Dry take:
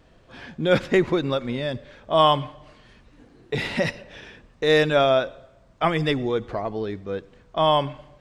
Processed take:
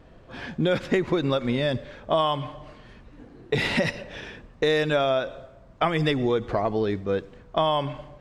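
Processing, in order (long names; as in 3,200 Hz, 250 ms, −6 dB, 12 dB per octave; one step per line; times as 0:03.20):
downward compressor 12 to 1, threshold −24 dBFS, peak gain reduction 12.5 dB
one half of a high-frequency compander decoder only
level +5 dB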